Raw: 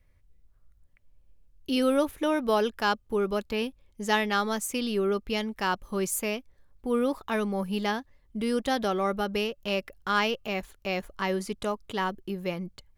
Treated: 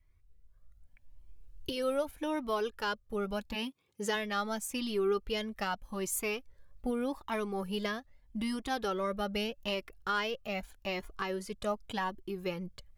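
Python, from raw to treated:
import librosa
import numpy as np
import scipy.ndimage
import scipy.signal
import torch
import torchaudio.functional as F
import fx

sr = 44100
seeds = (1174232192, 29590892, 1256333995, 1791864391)

y = fx.recorder_agc(x, sr, target_db=-15.5, rise_db_per_s=7.8, max_gain_db=30)
y = fx.highpass(y, sr, hz=fx.line((3.54, 220.0), (4.14, 94.0)), slope=24, at=(3.54, 4.14), fade=0.02)
y = fx.comb_cascade(y, sr, direction='rising', hz=0.82)
y = y * librosa.db_to_amplitude(-3.5)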